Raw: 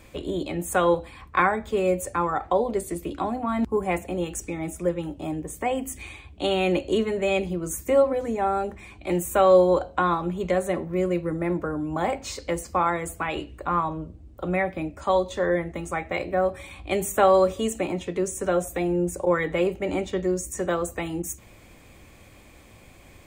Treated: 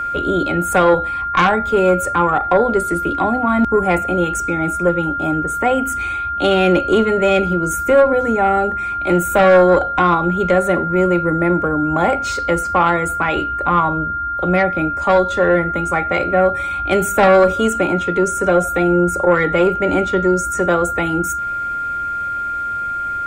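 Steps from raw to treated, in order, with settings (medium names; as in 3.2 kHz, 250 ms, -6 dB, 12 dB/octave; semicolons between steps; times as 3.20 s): Chebyshev shaper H 2 -9 dB, 5 -15 dB, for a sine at -6.5 dBFS; treble shelf 3.8 kHz -6 dB; whistle 1.4 kHz -24 dBFS; trim +4.5 dB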